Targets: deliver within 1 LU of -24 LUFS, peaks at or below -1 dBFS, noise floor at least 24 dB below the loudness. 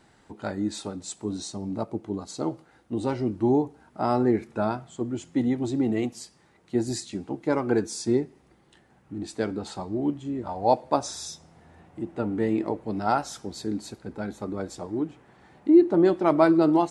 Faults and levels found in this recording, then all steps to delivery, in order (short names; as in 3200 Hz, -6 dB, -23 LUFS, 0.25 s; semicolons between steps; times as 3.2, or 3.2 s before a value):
loudness -26.5 LUFS; peak -5.5 dBFS; loudness target -24.0 LUFS
-> gain +2.5 dB